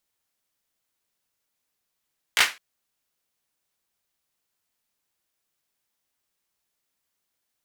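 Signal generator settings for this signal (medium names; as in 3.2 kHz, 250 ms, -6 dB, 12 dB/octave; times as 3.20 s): hand clap length 0.21 s, bursts 3, apart 17 ms, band 2 kHz, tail 0.26 s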